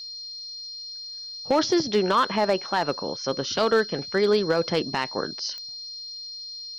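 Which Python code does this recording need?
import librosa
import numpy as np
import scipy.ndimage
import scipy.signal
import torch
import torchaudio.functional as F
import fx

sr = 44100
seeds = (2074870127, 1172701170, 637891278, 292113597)

y = fx.fix_declip(x, sr, threshold_db=-13.0)
y = fx.fix_declick_ar(y, sr, threshold=10.0)
y = fx.notch(y, sr, hz=4200.0, q=30.0)
y = fx.noise_reduce(y, sr, print_start_s=0.83, print_end_s=1.33, reduce_db=30.0)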